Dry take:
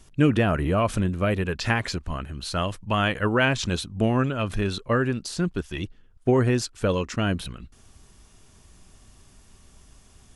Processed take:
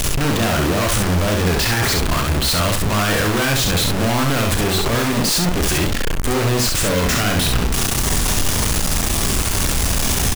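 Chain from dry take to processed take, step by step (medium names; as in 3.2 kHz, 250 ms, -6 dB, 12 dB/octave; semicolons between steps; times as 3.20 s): one-bit comparator; on a send: early reflections 35 ms -8.5 dB, 67 ms -3.5 dB; on the sum: trim +6.5 dB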